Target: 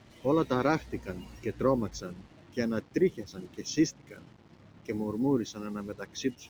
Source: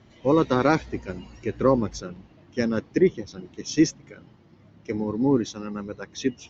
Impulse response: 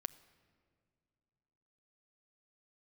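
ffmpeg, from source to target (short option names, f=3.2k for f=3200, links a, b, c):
-filter_complex "[0:a]asplit=2[a][b];[b]acompressor=threshold=-34dB:ratio=6,volume=-1.5dB[c];[a][c]amix=inputs=2:normalize=0,acrusher=bits=7:mix=0:aa=0.5,volume=-7.5dB"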